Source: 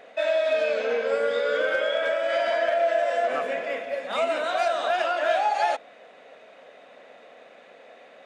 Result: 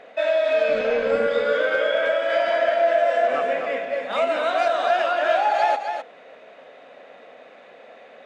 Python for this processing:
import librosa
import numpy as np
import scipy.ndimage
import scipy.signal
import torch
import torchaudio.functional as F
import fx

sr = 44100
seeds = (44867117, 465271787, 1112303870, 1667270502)

y = fx.octave_divider(x, sr, octaves=1, level_db=-4.0, at=(0.68, 1.27))
y = fx.high_shelf(y, sr, hz=6600.0, db=-11.5)
y = y + 10.0 ** (-7.0 / 20.0) * np.pad(y, (int(255 * sr / 1000.0), 0))[:len(y)]
y = y * librosa.db_to_amplitude(3.0)